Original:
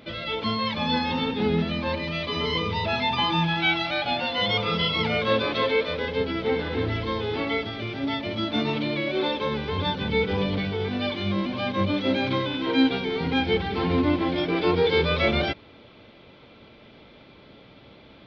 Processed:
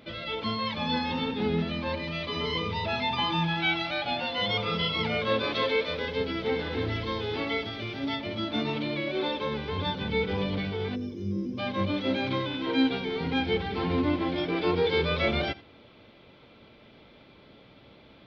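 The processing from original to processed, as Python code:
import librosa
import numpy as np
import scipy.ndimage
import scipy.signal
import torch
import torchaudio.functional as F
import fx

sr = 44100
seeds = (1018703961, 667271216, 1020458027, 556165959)

y = fx.high_shelf(x, sr, hz=4100.0, db=6.5, at=(5.43, 8.16))
y = fx.spec_box(y, sr, start_s=10.95, length_s=0.63, low_hz=530.0, high_hz=4900.0, gain_db=-22)
y = y + 10.0 ** (-20.5 / 20.0) * np.pad(y, (int(84 * sr / 1000.0), 0))[:len(y)]
y = y * librosa.db_to_amplitude(-4.0)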